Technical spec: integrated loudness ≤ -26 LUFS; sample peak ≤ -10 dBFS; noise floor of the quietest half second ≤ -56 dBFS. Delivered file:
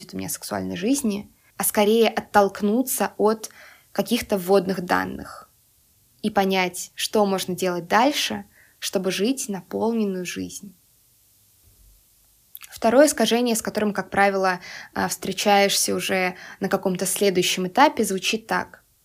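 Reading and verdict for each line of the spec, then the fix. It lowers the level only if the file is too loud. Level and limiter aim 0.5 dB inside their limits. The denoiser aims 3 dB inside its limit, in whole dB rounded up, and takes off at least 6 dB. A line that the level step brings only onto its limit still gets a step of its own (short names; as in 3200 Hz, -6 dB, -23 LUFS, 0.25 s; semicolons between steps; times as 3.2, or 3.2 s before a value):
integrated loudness -22.0 LUFS: fail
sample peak -3.5 dBFS: fail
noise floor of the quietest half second -60 dBFS: OK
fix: gain -4.5 dB; limiter -10.5 dBFS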